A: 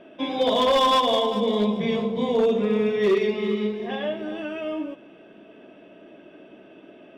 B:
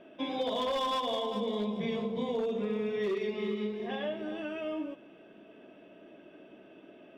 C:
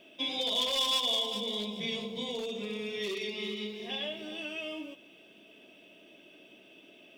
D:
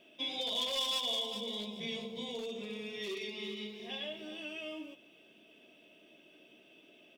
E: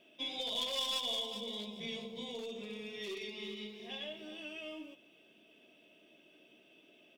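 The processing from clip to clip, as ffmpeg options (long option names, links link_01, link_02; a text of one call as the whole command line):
ffmpeg -i in.wav -af "acompressor=threshold=-23dB:ratio=6,volume=-6dB" out.wav
ffmpeg -i in.wav -af "aexciter=amount=7.1:drive=4.1:freq=2300,volume=-5.5dB" out.wav
ffmpeg -i in.wav -filter_complex "[0:a]asplit=2[link_01][link_02];[link_02]adelay=13,volume=-11.5dB[link_03];[link_01][link_03]amix=inputs=2:normalize=0,volume=-5dB" out.wav
ffmpeg -i in.wav -af "aeval=exprs='0.075*(cos(1*acos(clip(val(0)/0.075,-1,1)))-cos(1*PI/2))+0.00668*(cos(3*acos(clip(val(0)/0.075,-1,1)))-cos(3*PI/2))+0.00237*(cos(4*acos(clip(val(0)/0.075,-1,1)))-cos(4*PI/2))+0.000531*(cos(6*acos(clip(val(0)/0.075,-1,1)))-cos(6*PI/2))':channel_layout=same" out.wav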